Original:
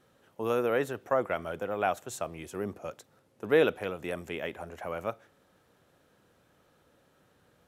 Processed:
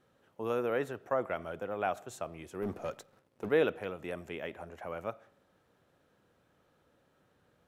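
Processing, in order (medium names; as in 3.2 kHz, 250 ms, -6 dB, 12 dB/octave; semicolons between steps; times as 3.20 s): 2.62–3.49 s: waveshaping leveller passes 2; treble shelf 4.6 kHz -6 dB; on a send: reverberation RT60 0.65 s, pre-delay 30 ms, DRR 22.5 dB; on the sum: trim -4 dB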